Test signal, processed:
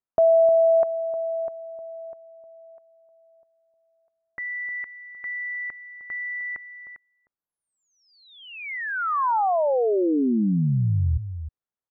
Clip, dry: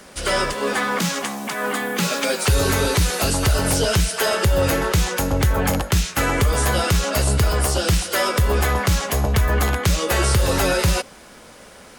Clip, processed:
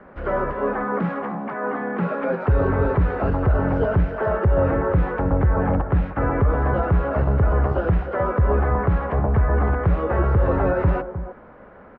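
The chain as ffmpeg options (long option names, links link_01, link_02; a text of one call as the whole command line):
ffmpeg -i in.wav -filter_complex "[0:a]lowpass=frequency=1600:width=0.5412,lowpass=frequency=1600:width=1.3066,acrossover=split=1200[link_01][link_02];[link_01]aecho=1:1:308:0.299[link_03];[link_02]alimiter=level_in=5.5dB:limit=-24dB:level=0:latency=1:release=48,volume=-5.5dB[link_04];[link_03][link_04]amix=inputs=2:normalize=0" out.wav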